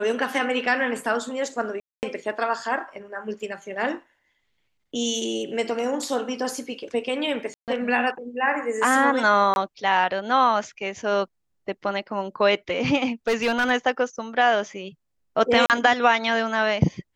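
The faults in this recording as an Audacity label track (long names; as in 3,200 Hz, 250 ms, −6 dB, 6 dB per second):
1.800000	2.030000	drop-out 229 ms
7.540000	7.680000	drop-out 138 ms
9.540000	9.560000	drop-out 21 ms
13.280000	13.710000	clipping −17 dBFS
15.660000	15.700000	drop-out 38 ms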